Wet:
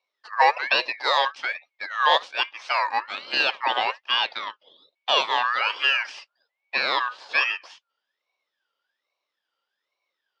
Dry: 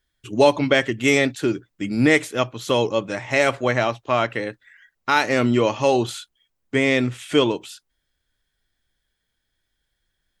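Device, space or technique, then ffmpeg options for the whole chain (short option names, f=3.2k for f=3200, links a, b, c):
voice changer toy: -filter_complex "[0:a]aeval=exprs='val(0)*sin(2*PI*1800*n/s+1800*0.25/1.2*sin(2*PI*1.2*n/s))':c=same,highpass=540,equalizer=f=560:t=q:w=4:g=6,equalizer=f=910:t=q:w=4:g=5,equalizer=f=1.4k:t=q:w=4:g=-5,equalizer=f=2k:t=q:w=4:g=-8,equalizer=f=2.9k:t=q:w=4:g=3,lowpass=f=4.8k:w=0.5412,lowpass=f=4.8k:w=1.3066,asettb=1/sr,asplit=3[a][b][c];[a]atrim=end=6.174[d];[b]atrim=start=6.17:end=6.82,asetpts=PTS-STARTPTS,afade=t=in:d=0.004:c=qsin,afade=t=out:st=0.646:d=0.004:c=qsin,equalizer=f=740:t=o:w=1.2:g=7[e];[c]atrim=start=6.816[f];[d][e]acrossfade=d=0.004:c1=hsin:c2=qsin[g];[g][f]acrossfade=d=0.004:c1=qsin:c2=hsin"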